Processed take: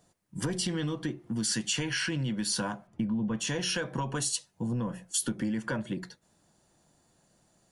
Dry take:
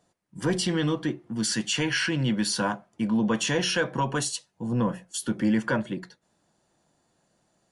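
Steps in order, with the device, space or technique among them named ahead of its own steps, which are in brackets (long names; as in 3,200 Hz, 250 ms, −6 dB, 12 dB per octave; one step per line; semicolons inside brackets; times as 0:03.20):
0:02.87–0:03.40: bass and treble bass +8 dB, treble −13 dB
ASMR close-microphone chain (low-shelf EQ 150 Hz +7.5 dB; downward compressor 6 to 1, threshold −29 dBFS, peak gain reduction 14.5 dB; high-shelf EQ 6,100 Hz +8 dB)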